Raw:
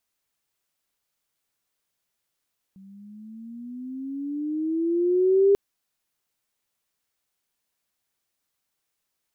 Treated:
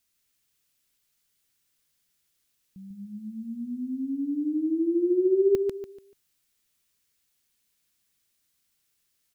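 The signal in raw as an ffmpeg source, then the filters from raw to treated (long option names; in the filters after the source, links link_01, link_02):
-f lavfi -i "aevalsrc='pow(10,(-13.5+31*(t/2.79-1))/20)*sin(2*PI*190*2.79/(13*log(2)/12)*(exp(13*log(2)/12*t/2.79)-1))':duration=2.79:sample_rate=44100"
-filter_complex "[0:a]equalizer=frequency=760:width_type=o:width=2:gain=-11,asplit=2[link_01][link_02];[link_02]acompressor=threshold=-35dB:ratio=6,volume=-1dB[link_03];[link_01][link_03]amix=inputs=2:normalize=0,aecho=1:1:145|290|435|580:0.562|0.174|0.054|0.0168"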